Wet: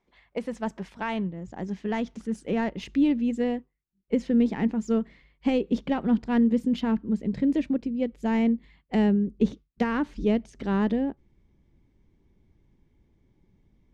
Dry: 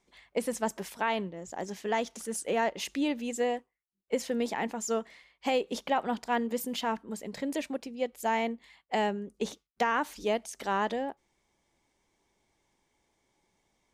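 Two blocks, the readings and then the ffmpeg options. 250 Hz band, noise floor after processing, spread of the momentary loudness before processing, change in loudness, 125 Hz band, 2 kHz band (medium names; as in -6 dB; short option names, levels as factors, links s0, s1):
+11.5 dB, -72 dBFS, 7 LU, +5.5 dB, +13.0 dB, -2.0 dB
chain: -af "adynamicsmooth=sensitivity=1.5:basefreq=3400,asubboost=boost=10.5:cutoff=230"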